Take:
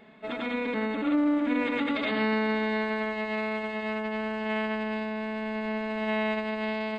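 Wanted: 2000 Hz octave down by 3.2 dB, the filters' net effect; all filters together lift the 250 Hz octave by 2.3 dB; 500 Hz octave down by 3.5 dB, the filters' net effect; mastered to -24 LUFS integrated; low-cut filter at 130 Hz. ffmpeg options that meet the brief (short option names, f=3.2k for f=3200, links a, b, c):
-af "highpass=130,equalizer=f=250:t=o:g=4.5,equalizer=f=500:t=o:g=-5.5,equalizer=f=2k:t=o:g=-3.5,volume=5dB"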